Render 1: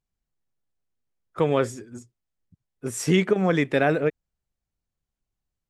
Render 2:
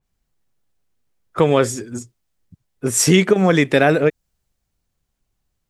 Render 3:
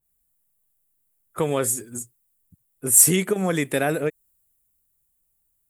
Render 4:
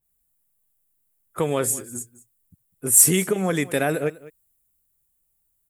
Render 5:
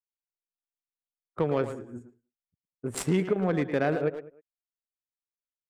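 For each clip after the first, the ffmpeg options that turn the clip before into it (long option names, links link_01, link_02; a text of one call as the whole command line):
ffmpeg -i in.wav -filter_complex "[0:a]asplit=2[link_01][link_02];[link_02]acompressor=threshold=-28dB:ratio=6,volume=1.5dB[link_03];[link_01][link_03]amix=inputs=2:normalize=0,adynamicequalizer=threshold=0.0141:dfrequency=3400:dqfactor=0.7:tfrequency=3400:tqfactor=0.7:attack=5:release=100:ratio=0.375:range=3:mode=boostabove:tftype=highshelf,volume=4dB" out.wav
ffmpeg -i in.wav -af "aexciter=amount=9:drive=6.9:freq=7900,volume=-8.5dB" out.wav
ffmpeg -i in.wav -af "aecho=1:1:201:0.112" out.wav
ffmpeg -i in.wav -filter_complex "[0:a]agate=range=-33dB:threshold=-38dB:ratio=3:detection=peak,adynamicsmooth=sensitivity=0.5:basefreq=1200,asplit=2[link_01][link_02];[link_02]adelay=110,highpass=300,lowpass=3400,asoftclip=type=hard:threshold=-19dB,volume=-8dB[link_03];[link_01][link_03]amix=inputs=2:normalize=0,volume=-3dB" out.wav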